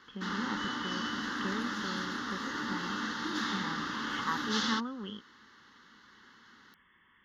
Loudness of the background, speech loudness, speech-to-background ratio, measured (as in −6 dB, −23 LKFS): −35.0 LKFS, −40.5 LKFS, −5.5 dB